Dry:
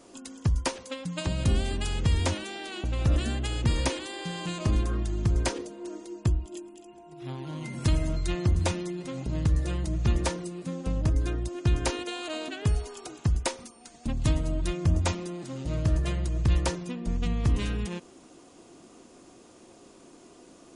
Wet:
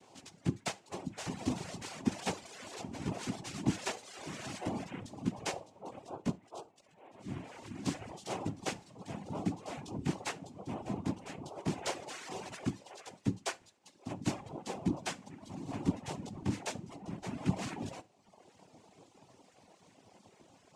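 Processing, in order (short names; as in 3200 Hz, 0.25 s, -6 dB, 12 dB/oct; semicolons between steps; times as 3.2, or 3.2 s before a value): chorus voices 2, 0.14 Hz, delay 17 ms, depth 2.2 ms; noise vocoder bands 4; reverb removal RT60 0.98 s; on a send: reverb, pre-delay 3 ms, DRR 15 dB; on the sum: gain -3 dB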